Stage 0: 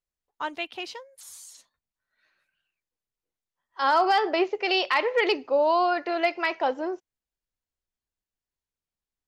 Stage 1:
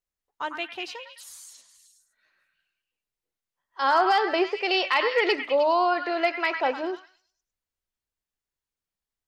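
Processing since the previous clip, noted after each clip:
mains-hum notches 60/120/180/240/300 Hz
echo through a band-pass that steps 103 ms, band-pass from 1,500 Hz, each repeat 0.7 octaves, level −4 dB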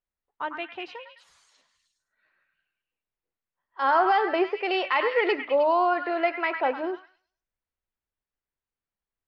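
low-pass filter 2,400 Hz 12 dB per octave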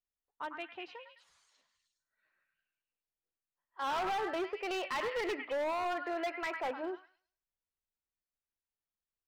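hard clipping −23 dBFS, distortion −9 dB
level −8.5 dB

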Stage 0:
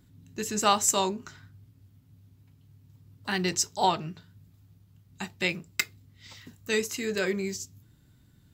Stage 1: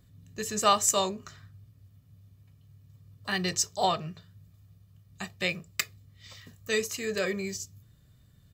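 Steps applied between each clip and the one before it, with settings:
comb filter 1.7 ms, depth 56%
level −1.5 dB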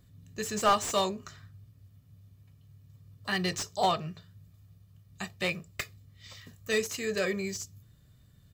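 slew-rate limiting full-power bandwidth 140 Hz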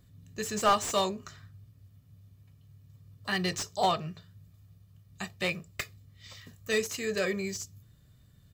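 no processing that can be heard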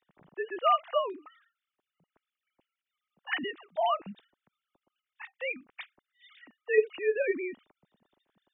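three sine waves on the formant tracks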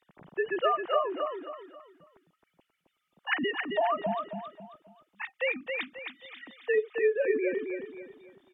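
treble cut that deepens with the level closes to 1,500 Hz, closed at −26.5 dBFS
downward compressor 6 to 1, threshold −31 dBFS, peak gain reduction 13.5 dB
on a send: repeating echo 268 ms, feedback 35%, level −5 dB
on the sum: level +7 dB

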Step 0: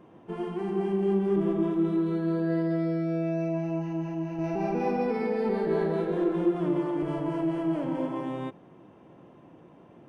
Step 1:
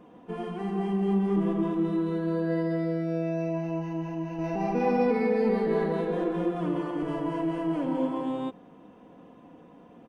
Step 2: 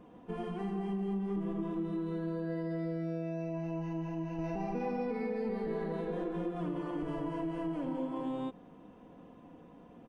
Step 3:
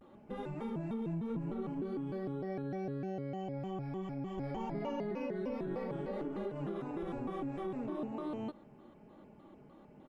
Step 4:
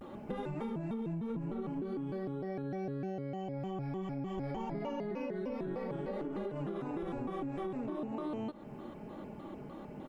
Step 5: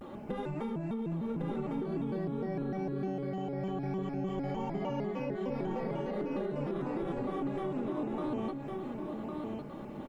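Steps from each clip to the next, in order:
comb filter 4.1 ms, depth 64%
low-shelf EQ 83 Hz +11.5 dB; downward compressor 4 to 1, threshold −29 dBFS, peak gain reduction 8.5 dB; level −4 dB
pitch modulation by a square or saw wave square 3.3 Hz, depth 250 cents; level −3 dB
downward compressor 6 to 1, threshold −47 dBFS, peak gain reduction 12.5 dB; level +11 dB
single-tap delay 1,105 ms −4 dB; level +2 dB

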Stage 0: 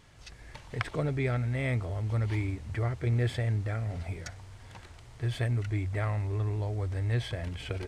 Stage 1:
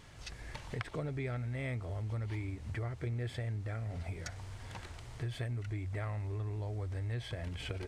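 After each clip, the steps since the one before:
downward compressor 3 to 1, threshold −41 dBFS, peak gain reduction 12.5 dB
level +2.5 dB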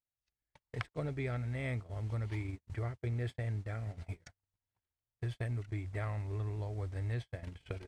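noise gate −38 dBFS, range −50 dB
level +1 dB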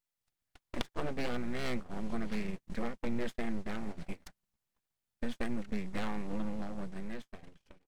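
fade-out on the ending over 1.50 s
full-wave rectification
level +5 dB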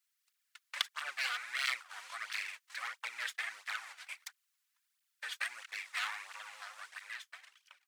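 high-pass filter 1,300 Hz 24 dB per octave
through-zero flanger with one copy inverted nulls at 1.5 Hz, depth 3.8 ms
level +11.5 dB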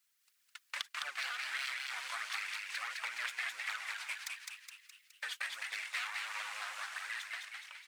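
downward compressor 5 to 1, threshold −43 dBFS, peak gain reduction 15 dB
on a send: echo with shifted repeats 209 ms, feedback 54%, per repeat +110 Hz, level −3 dB
on the sum: level +5 dB

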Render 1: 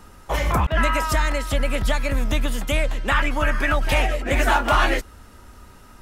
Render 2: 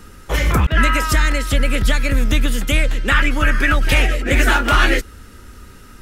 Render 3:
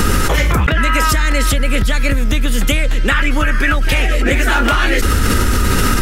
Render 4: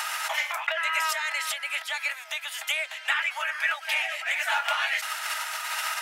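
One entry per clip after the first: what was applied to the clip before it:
flat-topped bell 810 Hz −9 dB 1.1 octaves; level +6 dB
envelope flattener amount 100%; level −2 dB
Chebyshev high-pass with heavy ripple 620 Hz, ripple 6 dB; level −6.5 dB

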